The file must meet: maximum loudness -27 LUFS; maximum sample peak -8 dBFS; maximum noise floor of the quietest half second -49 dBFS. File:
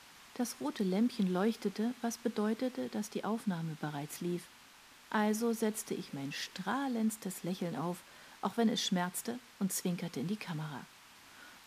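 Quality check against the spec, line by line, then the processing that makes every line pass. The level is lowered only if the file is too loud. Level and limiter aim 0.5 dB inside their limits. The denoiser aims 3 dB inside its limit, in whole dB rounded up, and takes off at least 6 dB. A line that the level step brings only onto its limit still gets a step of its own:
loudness -36.0 LUFS: OK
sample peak -18.0 dBFS: OK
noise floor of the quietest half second -58 dBFS: OK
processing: none

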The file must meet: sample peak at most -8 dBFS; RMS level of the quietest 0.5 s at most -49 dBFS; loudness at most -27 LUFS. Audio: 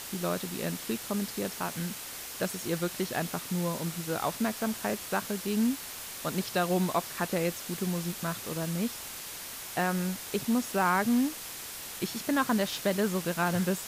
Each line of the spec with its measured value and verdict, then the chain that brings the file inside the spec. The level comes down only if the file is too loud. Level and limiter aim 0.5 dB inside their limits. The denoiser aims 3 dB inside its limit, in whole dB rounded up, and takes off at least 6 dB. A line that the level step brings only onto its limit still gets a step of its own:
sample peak -14.5 dBFS: OK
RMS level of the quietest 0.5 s -41 dBFS: fail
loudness -31.0 LUFS: OK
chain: denoiser 11 dB, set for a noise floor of -41 dBFS

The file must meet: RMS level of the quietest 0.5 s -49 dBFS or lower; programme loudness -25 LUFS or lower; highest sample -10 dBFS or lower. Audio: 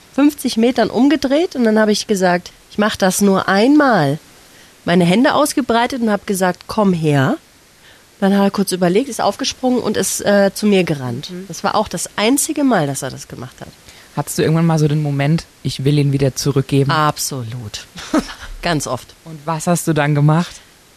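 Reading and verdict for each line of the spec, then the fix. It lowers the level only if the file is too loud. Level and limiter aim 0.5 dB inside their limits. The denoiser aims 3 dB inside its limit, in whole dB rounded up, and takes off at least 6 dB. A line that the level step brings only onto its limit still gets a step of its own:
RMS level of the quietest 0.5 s -47 dBFS: fail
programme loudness -16.0 LUFS: fail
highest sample -3.5 dBFS: fail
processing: gain -9.5 dB

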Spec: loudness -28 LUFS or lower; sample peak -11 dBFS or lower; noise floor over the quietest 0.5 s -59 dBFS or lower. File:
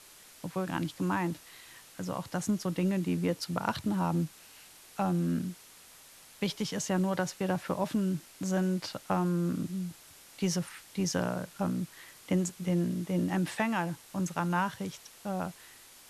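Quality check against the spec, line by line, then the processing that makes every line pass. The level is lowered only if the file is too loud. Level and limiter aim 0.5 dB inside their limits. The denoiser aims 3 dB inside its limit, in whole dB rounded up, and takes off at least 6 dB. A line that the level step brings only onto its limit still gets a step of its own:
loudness -32.5 LUFS: OK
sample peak -14.0 dBFS: OK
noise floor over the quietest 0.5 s -55 dBFS: fail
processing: denoiser 7 dB, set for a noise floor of -55 dBFS

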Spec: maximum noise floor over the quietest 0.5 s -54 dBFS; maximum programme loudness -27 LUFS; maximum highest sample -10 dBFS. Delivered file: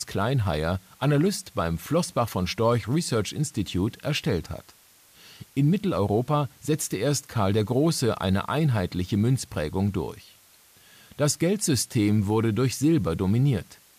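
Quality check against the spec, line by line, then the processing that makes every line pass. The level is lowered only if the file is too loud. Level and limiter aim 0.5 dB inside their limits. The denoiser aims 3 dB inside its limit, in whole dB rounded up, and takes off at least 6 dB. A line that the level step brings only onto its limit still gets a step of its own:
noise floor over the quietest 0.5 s -56 dBFS: OK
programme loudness -25.5 LUFS: fail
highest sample -12.5 dBFS: OK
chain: gain -2 dB

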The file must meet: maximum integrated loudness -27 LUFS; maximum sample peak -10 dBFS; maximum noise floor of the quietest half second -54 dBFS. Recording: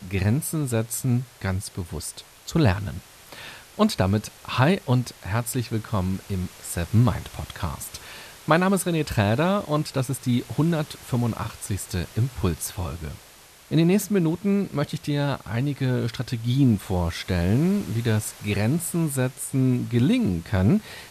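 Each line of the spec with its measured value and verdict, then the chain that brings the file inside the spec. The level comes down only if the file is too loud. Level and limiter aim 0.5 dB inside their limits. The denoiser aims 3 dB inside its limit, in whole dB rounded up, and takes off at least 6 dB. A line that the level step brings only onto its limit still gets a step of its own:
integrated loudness -24.5 LUFS: fail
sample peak -5.0 dBFS: fail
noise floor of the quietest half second -50 dBFS: fail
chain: denoiser 6 dB, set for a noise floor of -50 dBFS; gain -3 dB; limiter -10.5 dBFS

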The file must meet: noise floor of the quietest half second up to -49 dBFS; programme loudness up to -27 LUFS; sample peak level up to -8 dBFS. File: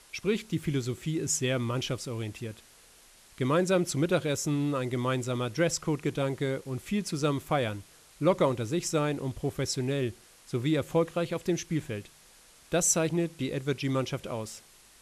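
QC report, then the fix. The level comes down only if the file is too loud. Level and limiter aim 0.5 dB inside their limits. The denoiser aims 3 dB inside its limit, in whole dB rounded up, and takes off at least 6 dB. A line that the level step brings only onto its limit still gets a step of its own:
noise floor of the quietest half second -57 dBFS: OK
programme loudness -30.0 LUFS: OK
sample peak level -13.0 dBFS: OK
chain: none

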